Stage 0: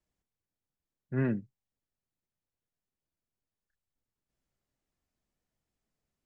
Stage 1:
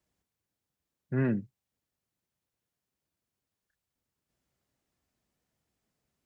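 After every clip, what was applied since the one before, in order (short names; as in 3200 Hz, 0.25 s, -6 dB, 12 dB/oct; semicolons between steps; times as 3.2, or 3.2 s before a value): in parallel at +1.5 dB: limiter -31 dBFS, peak gain reduction 11.5 dB; on the sum: HPF 58 Hz; gain -1.5 dB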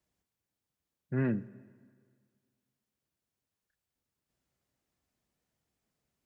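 plate-style reverb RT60 1.9 s, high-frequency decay 0.95×, DRR 18.5 dB; gain -2 dB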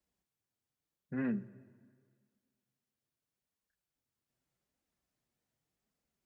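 flange 0.83 Hz, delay 3.5 ms, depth 5.6 ms, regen -34%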